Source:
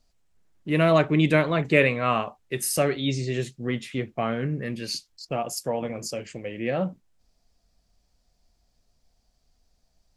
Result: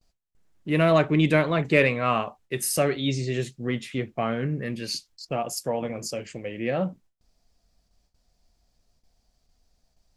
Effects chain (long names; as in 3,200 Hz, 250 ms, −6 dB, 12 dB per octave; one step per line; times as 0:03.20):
noise gate with hold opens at −58 dBFS
in parallel at −10.5 dB: soft clipping −14.5 dBFS, distortion −14 dB
on the sum: level −2 dB